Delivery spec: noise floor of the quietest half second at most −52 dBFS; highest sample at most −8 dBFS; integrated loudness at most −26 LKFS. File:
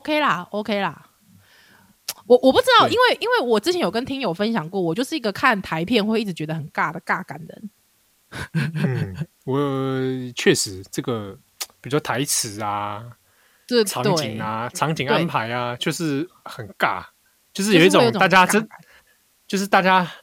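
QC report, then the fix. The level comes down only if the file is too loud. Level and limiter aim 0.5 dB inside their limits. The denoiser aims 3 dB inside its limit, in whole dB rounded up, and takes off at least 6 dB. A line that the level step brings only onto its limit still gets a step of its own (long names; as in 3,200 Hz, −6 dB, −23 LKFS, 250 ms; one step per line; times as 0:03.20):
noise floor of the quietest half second −62 dBFS: in spec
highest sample −3.0 dBFS: out of spec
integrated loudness −20.0 LKFS: out of spec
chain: level −6.5 dB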